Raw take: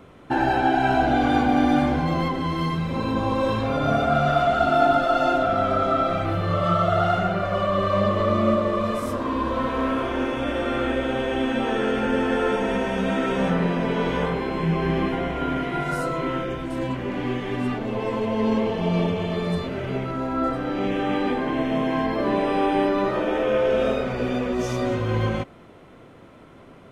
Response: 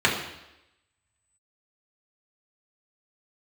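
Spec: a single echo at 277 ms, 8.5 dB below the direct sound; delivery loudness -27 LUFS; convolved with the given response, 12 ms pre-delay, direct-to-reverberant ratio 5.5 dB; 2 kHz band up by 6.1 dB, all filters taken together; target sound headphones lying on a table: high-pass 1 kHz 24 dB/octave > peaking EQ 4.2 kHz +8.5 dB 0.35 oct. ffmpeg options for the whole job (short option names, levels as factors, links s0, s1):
-filter_complex "[0:a]equalizer=f=2000:t=o:g=8,aecho=1:1:277:0.376,asplit=2[s0][s1];[1:a]atrim=start_sample=2205,adelay=12[s2];[s1][s2]afir=irnorm=-1:irlink=0,volume=0.0668[s3];[s0][s3]amix=inputs=2:normalize=0,highpass=f=1000:w=0.5412,highpass=f=1000:w=1.3066,equalizer=f=4200:t=o:w=0.35:g=8.5,volume=0.708"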